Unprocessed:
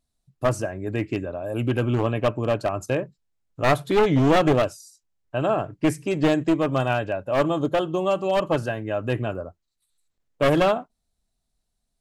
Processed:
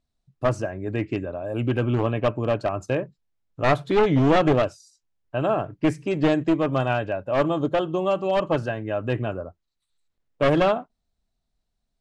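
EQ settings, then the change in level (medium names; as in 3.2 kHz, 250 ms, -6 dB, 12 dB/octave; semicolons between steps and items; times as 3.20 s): distance through air 84 m; 0.0 dB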